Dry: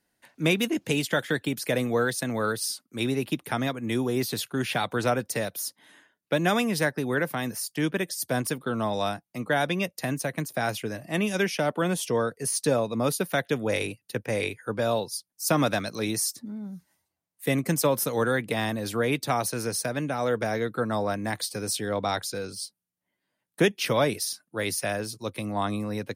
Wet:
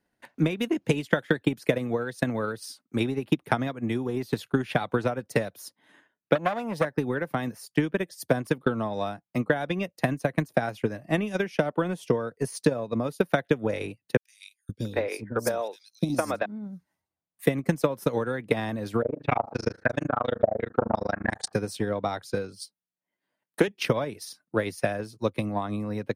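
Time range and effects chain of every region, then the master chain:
0:06.35–0:06.85: flat-topped bell 690 Hz +9.5 dB 1 octave + saturating transformer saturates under 1,400 Hz
0:14.17–0:16.46: parametric band 140 Hz −8 dB 0.64 octaves + three-band delay without the direct sound highs, lows, mids 520/680 ms, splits 310/3,700 Hz
0:19.02–0:21.53: hum removal 48.01 Hz, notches 38 + amplitude modulation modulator 26 Hz, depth 100% + low-pass on a step sequencer 5.7 Hz 610–7,500 Hz
0:22.60–0:23.68: high-pass filter 270 Hz 6 dB per octave + high-shelf EQ 4,300 Hz +4 dB + highs frequency-modulated by the lows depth 0.11 ms
whole clip: high-shelf EQ 3,500 Hz −12 dB; downward compressor, threshold −26 dBFS; transient designer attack +10 dB, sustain −5 dB

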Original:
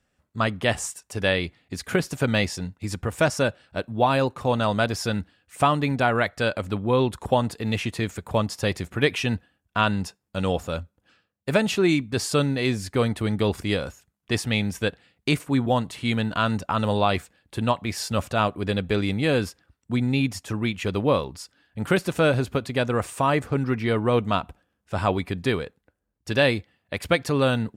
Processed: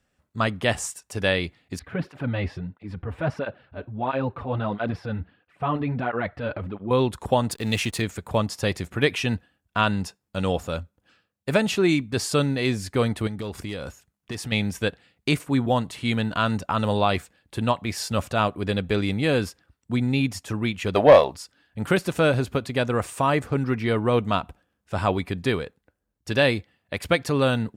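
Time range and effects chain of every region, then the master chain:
0:01.79–0:06.91: transient designer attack −5 dB, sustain +7 dB + high-frequency loss of the air 430 metres + through-zero flanger with one copy inverted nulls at 1.5 Hz, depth 6.4 ms
0:07.51–0:08.02: high-shelf EQ 3,700 Hz +11 dB + slack as between gear wheels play −40 dBFS
0:13.27–0:14.52: gain into a clipping stage and back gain 15.5 dB + downward compressor, threshold −28 dBFS
0:20.95–0:21.35: parametric band 650 Hz +14.5 dB 0.52 octaves + mid-hump overdrive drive 14 dB, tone 7,500 Hz, clips at −3 dBFS
whole clip: no processing

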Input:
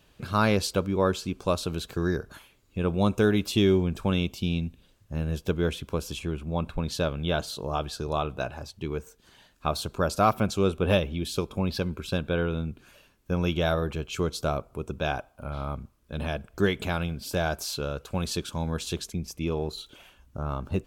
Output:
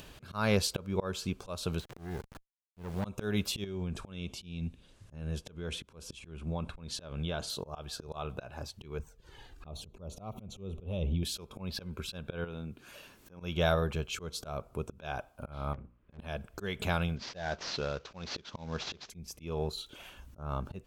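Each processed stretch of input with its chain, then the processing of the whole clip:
0:01.80–0:03.05: hold until the input has moved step −37 dBFS + de-essing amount 95% + tube saturation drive 26 dB, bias 0.6
0:03.64–0:07.50: Butterworth low-pass 11,000 Hz + downward compressor 10 to 1, threshold −28 dBFS
0:08.99–0:11.23: spectral tilt −2 dB per octave + downward compressor 8 to 1, threshold −24 dBFS + flanger swept by the level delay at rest 2.9 ms, full sweep at −29 dBFS
0:12.44–0:13.40: low-shelf EQ 85 Hz −11.5 dB + downward compressor 10 to 1, threshold −33 dBFS
0:15.73–0:16.19: low-pass filter 2,700 Hz 24 dB per octave + mains-hum notches 60/120/180/240/300/360/420/480/540 Hz + tube saturation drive 35 dB, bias 0.7
0:17.16–0:19.10: variable-slope delta modulation 32 kbit/s + low-shelf EQ 120 Hz −7.5 dB
whole clip: upward compression, threshold −39 dBFS; dynamic equaliser 300 Hz, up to −8 dB, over −44 dBFS, Q 3.2; volume swells 224 ms; level −1.5 dB

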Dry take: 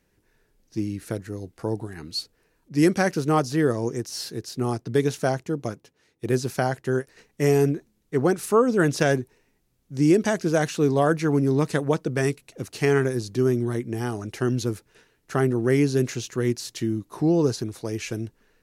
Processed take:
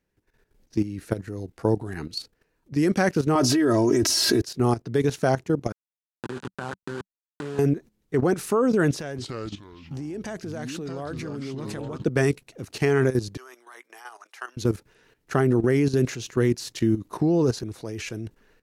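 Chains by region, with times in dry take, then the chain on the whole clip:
0:03.35–0:04.42: comb filter 3.1 ms, depth 90% + envelope flattener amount 70%
0:05.72–0:07.59: hold until the input has moved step −22.5 dBFS + downward compressor 5 to 1, threshold −29 dBFS + loudspeaker in its box 140–9,500 Hz, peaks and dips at 190 Hz +4 dB, 650 Hz −8 dB, 970 Hz +5 dB, 1,500 Hz +7 dB, 2,100 Hz −6 dB, 5,600 Hz −5 dB
0:08.91–0:12.04: downward compressor 4 to 1, threshold −29 dBFS + delay with pitch and tempo change per echo 270 ms, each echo −4 semitones, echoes 3, each echo −6 dB
0:13.37–0:14.57: four-pole ladder high-pass 770 Hz, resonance 30% + high-shelf EQ 9,700 Hz +2.5 dB
whole clip: output level in coarse steps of 13 dB; parametric band 11,000 Hz −4.5 dB 2.1 octaves; automatic gain control gain up to 6.5 dB

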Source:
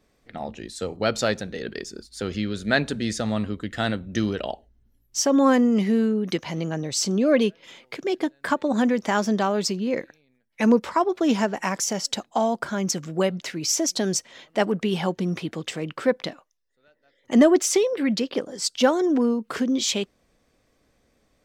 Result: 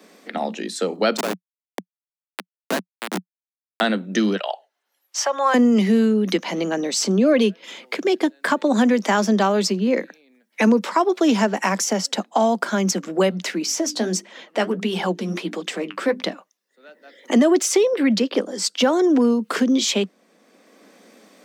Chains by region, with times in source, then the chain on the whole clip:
0:01.17–0:03.81: high-shelf EQ 3,700 Hz +9 dB + comparator with hysteresis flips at −17.5 dBFS
0:04.36–0:05.54: high-pass filter 670 Hz 24 dB per octave + high-shelf EQ 6,500 Hz −8.5 dB
0:13.62–0:16.22: mains-hum notches 50/100/150/200/250/300/350/400 Hz + flanger 1.5 Hz, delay 1.1 ms, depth 9.6 ms, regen +50%
whole clip: Butterworth high-pass 180 Hz 96 dB per octave; boost into a limiter +11 dB; multiband upward and downward compressor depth 40%; level −6 dB

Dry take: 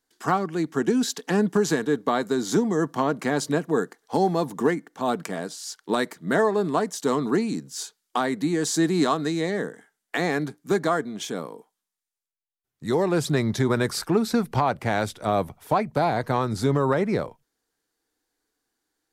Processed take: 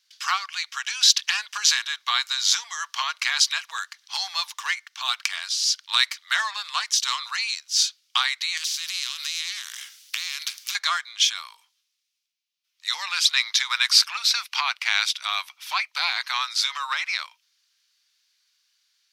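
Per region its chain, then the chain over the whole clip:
0:08.57–0:10.75: spectral tilt +3 dB per octave + downward compressor 12 to 1, threshold −35 dBFS + every bin compressed towards the loudest bin 2 to 1
whole clip: Butterworth high-pass 1,100 Hz 36 dB per octave; flat-topped bell 3,700 Hz +13.5 dB; level +3 dB

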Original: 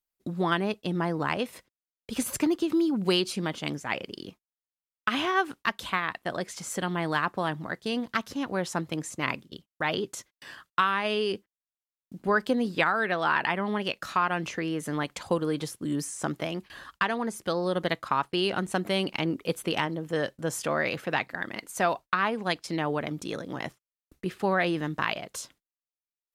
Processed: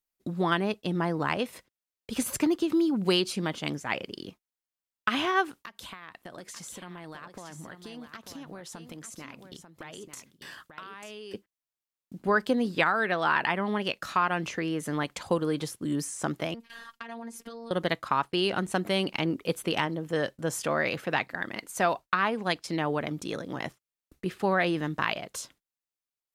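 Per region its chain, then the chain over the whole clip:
0:05.49–0:11.34: high-shelf EQ 5,800 Hz +5.5 dB + downward compressor 12 to 1, threshold −39 dBFS + single-tap delay 892 ms −8.5 dB
0:16.54–0:17.71: comb filter 5.5 ms, depth 52% + downward compressor, threshold −36 dBFS + phases set to zero 231 Hz
whole clip: no processing

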